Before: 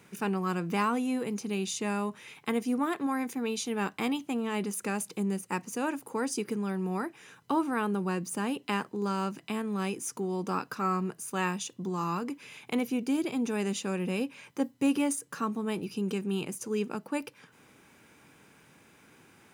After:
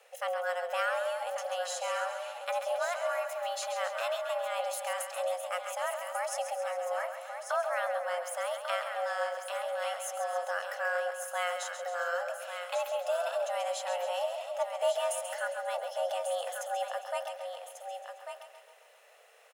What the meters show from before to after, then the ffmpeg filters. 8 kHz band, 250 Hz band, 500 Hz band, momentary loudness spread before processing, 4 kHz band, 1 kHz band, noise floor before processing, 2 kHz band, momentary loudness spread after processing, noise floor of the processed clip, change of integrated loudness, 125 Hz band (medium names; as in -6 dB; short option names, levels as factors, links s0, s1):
-2.0 dB, under -40 dB, +3.0 dB, 5 LU, +1.0 dB, +1.0 dB, -60 dBFS, +2.5 dB, 5 LU, -57 dBFS, -2.0 dB, under -40 dB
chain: -filter_complex "[0:a]asplit=2[s0][s1];[s1]aecho=0:1:135|270|405|540|675|810|945:0.355|0.209|0.124|0.0729|0.043|0.0254|0.015[s2];[s0][s2]amix=inputs=2:normalize=0,afreqshift=350,asplit=2[s3][s4];[s4]aecho=0:1:1143:0.422[s5];[s3][s5]amix=inputs=2:normalize=0,volume=0.668"